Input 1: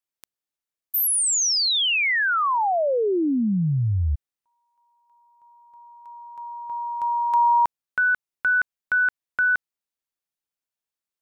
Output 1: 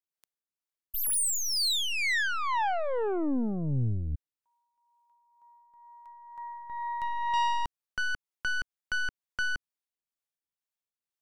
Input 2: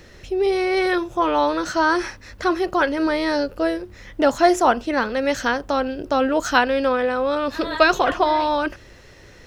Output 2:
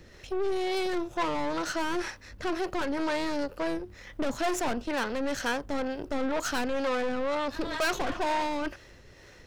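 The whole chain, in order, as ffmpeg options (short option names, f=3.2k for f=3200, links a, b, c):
-filter_complex "[0:a]aeval=exprs='(tanh(15.8*val(0)+0.7)-tanh(0.7))/15.8':c=same,acrossover=split=400[a][b];[a]aeval=exprs='val(0)*(1-0.5/2+0.5/2*cos(2*PI*2.1*n/s))':c=same[c];[b]aeval=exprs='val(0)*(1-0.5/2-0.5/2*cos(2*PI*2.1*n/s))':c=same[d];[c][d]amix=inputs=2:normalize=0"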